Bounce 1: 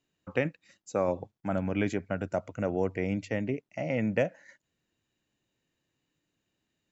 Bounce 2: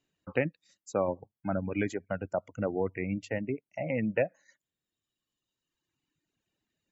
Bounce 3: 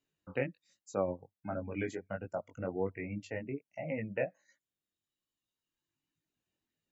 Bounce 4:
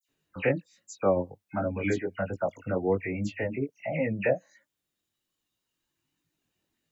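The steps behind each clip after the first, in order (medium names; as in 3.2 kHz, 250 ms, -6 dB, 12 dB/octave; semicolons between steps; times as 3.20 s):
spectral gate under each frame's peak -30 dB strong; reverb removal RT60 1.8 s
chorus 1.3 Hz, delay 18 ms, depth 4 ms; trim -2.5 dB
phase dispersion lows, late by 88 ms, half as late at 2.9 kHz; trim +8.5 dB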